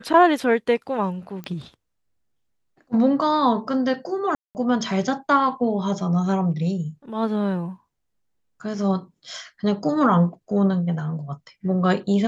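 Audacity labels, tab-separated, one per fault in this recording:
1.440000	1.440000	pop -20 dBFS
4.350000	4.550000	dropout 199 ms

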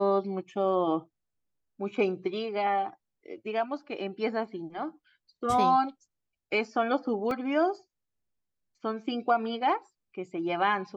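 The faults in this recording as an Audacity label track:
7.310000	7.310000	dropout 2.3 ms

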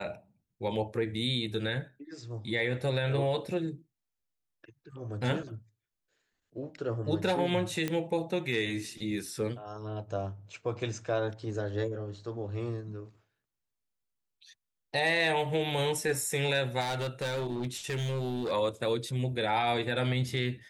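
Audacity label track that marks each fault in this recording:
7.880000	7.880000	pop -17 dBFS
16.800000	18.520000	clipped -29 dBFS

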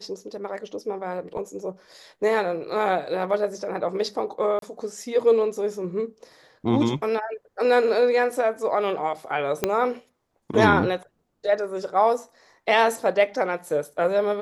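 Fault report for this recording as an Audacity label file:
4.590000	4.620000	dropout 32 ms
9.640000	9.640000	pop -7 dBFS

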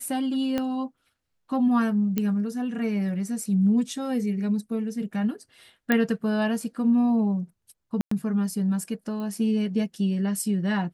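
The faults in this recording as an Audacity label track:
0.580000	0.580000	pop -14 dBFS
2.180000	2.180000	pop -12 dBFS
5.920000	5.920000	pop -9 dBFS
8.010000	8.110000	dropout 104 ms
9.200000	9.200000	pop -25 dBFS

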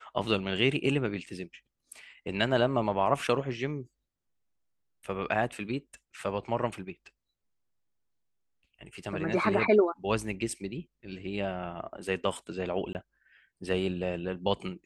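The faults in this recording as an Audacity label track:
12.930000	12.950000	dropout 19 ms

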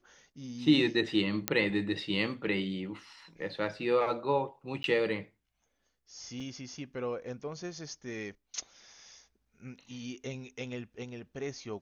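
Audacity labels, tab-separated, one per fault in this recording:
1.480000	1.480000	pop -9 dBFS
4.830000	4.840000	dropout 12 ms
6.400000	6.400000	dropout 3 ms

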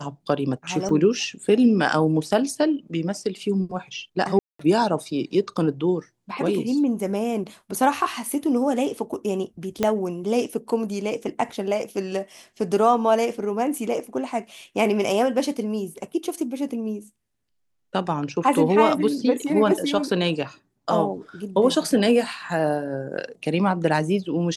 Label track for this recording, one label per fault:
0.890000	0.890000	dropout 2.2 ms
4.390000	4.590000	dropout 204 ms
9.830000	9.830000	pop -8 dBFS

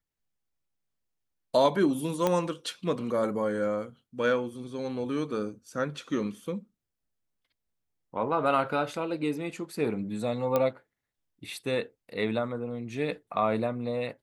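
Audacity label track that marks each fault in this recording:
2.270000	2.270000	pop -12 dBFS
10.560000	10.560000	pop -13 dBFS

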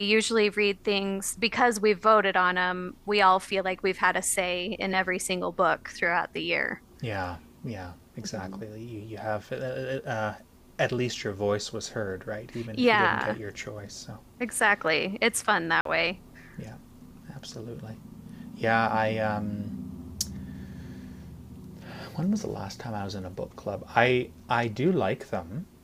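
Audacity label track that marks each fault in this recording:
15.810000	15.850000	dropout 43 ms

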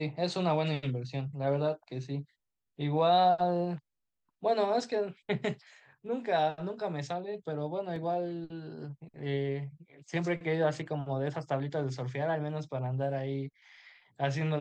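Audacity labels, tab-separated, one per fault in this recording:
7.960000	7.960000	dropout 2.1 ms

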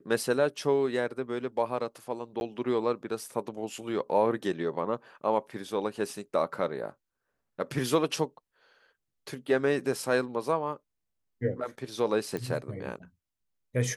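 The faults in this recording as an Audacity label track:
2.400000	2.410000	dropout 11 ms
12.370000	12.370000	pop -21 dBFS

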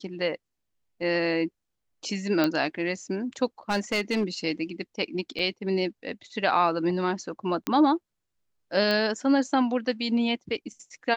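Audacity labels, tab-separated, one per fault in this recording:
2.440000	2.440000	pop -11 dBFS
3.690000	4.240000	clipped -20.5 dBFS
5.390000	5.390000	dropout 4.5 ms
7.670000	7.670000	pop -12 dBFS
8.910000	8.910000	pop -15 dBFS

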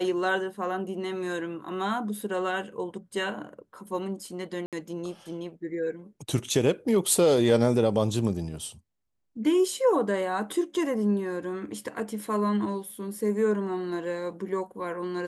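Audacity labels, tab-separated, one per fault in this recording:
4.660000	4.730000	dropout 67 ms

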